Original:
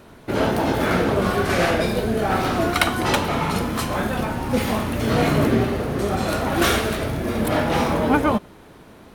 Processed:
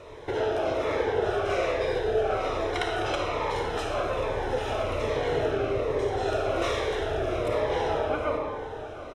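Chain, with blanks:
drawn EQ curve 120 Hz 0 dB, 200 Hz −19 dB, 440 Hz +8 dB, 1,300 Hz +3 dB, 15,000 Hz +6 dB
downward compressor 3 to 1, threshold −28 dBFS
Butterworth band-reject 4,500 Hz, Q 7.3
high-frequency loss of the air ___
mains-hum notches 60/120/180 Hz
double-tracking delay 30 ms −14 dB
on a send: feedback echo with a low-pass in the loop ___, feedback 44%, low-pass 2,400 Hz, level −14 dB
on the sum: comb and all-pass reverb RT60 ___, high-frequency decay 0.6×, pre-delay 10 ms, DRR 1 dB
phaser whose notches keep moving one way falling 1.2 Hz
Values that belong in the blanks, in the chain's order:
110 metres, 718 ms, 1.8 s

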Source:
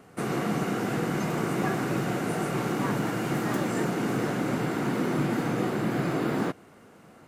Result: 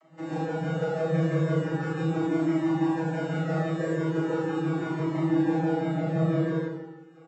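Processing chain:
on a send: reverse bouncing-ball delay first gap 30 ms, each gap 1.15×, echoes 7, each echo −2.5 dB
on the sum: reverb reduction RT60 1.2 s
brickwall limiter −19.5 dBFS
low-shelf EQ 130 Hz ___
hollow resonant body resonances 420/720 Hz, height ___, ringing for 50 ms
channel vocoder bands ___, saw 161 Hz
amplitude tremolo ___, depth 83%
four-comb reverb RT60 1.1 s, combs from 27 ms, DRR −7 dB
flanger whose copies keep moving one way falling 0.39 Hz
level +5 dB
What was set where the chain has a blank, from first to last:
−3.5 dB, 10 dB, 32, 6 Hz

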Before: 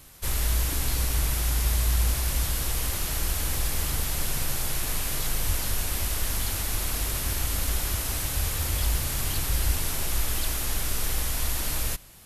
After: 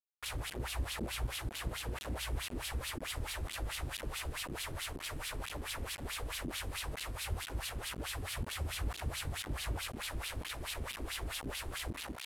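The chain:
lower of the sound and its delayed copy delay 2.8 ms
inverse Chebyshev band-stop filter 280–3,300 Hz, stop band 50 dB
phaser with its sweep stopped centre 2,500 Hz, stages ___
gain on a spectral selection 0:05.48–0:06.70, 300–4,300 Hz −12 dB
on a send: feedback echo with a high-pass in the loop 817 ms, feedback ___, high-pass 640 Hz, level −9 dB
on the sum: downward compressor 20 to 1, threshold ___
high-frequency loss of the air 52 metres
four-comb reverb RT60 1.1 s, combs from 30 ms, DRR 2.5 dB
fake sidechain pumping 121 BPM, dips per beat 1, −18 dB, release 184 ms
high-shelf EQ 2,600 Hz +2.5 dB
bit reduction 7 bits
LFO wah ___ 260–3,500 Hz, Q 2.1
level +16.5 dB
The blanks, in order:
4, 26%, −26 dBFS, 4.6 Hz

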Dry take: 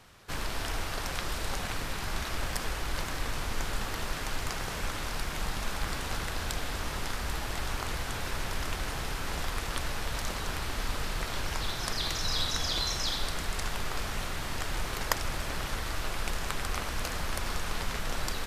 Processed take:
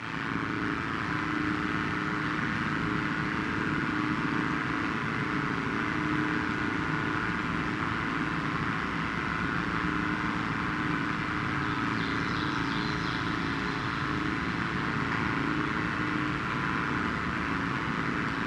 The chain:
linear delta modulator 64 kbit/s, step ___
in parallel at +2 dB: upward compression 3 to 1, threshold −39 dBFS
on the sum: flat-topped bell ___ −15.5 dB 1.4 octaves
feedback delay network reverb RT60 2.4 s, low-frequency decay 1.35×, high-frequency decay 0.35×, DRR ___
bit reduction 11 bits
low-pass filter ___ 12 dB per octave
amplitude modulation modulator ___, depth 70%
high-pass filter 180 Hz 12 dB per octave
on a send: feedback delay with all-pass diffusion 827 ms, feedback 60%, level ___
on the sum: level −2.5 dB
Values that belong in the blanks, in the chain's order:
−27 dBFS, 590 Hz, −6 dB, 1,700 Hz, 110 Hz, −5 dB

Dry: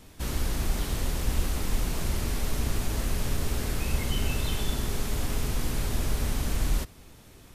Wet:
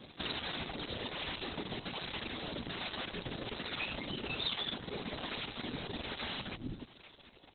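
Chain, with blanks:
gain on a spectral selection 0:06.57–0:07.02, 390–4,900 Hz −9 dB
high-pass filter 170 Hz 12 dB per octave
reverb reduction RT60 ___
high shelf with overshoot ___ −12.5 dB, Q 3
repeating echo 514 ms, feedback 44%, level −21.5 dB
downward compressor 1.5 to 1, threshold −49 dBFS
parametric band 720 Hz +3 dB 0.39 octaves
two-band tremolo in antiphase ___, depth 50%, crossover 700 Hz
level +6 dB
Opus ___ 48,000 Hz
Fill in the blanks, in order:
1.9 s, 5,400 Hz, 1.2 Hz, 6 kbit/s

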